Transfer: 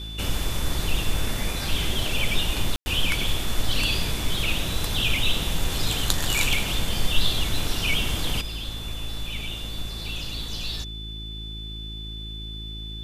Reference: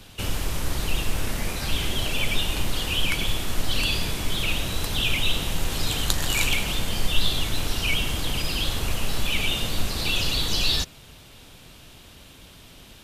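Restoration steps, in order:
hum removal 54.2 Hz, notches 7
notch filter 3,500 Hz, Q 30
ambience match 0:02.76–0:02.86
level correction +10 dB, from 0:08.41

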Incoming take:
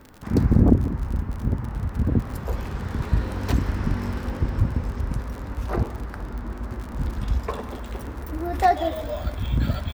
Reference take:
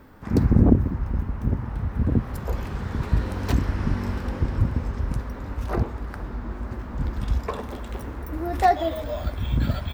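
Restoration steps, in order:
click removal
echo removal 182 ms −18 dB

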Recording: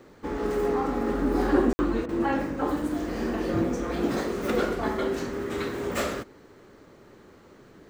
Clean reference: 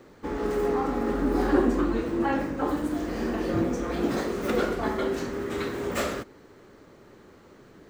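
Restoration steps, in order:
ambience match 0:01.73–0:01.79
repair the gap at 0:02.06, 27 ms

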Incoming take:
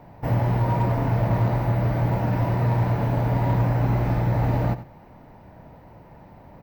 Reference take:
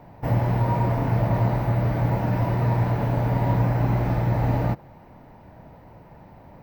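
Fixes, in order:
clipped peaks rebuilt −15 dBFS
echo removal 90 ms −14 dB

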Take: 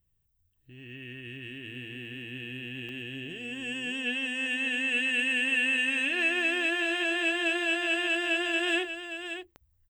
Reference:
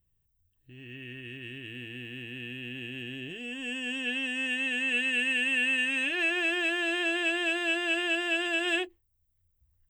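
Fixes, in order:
click removal
echo removal 580 ms −9 dB

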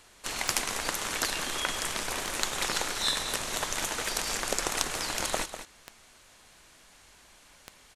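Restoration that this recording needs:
clipped peaks rebuilt −6.5 dBFS
click removal
echo removal 197 ms −10.5 dB

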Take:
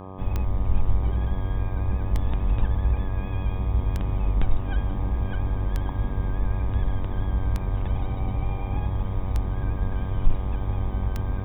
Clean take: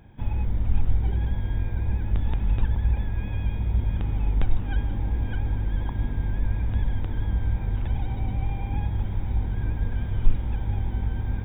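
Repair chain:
clipped peaks rebuilt −8.5 dBFS
click removal
hum removal 94.7 Hz, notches 13

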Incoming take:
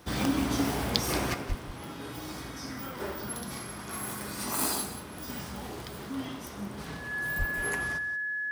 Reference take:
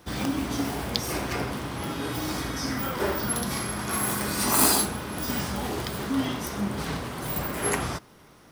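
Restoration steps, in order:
notch filter 1,700 Hz, Q 30
high-pass at the plosives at 0:01.48/0:07.38
echo removal 180 ms −12.5 dB
level 0 dB, from 0:01.34 +9.5 dB

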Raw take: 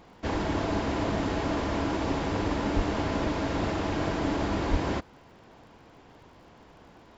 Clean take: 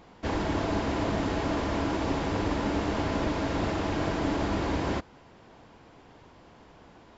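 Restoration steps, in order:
click removal
high-pass at the plosives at 0:02.75/0:04.70

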